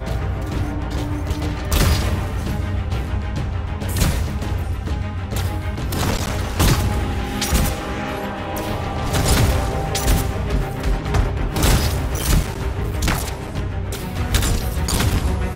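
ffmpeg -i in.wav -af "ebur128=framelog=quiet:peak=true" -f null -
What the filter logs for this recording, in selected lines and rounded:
Integrated loudness:
  I:         -21.8 LUFS
  Threshold: -31.8 LUFS
Loudness range:
  LRA:         3.2 LU
  Threshold: -41.7 LUFS
  LRA low:   -23.5 LUFS
  LRA high:  -20.2 LUFS
True peak:
  Peak:       -3.4 dBFS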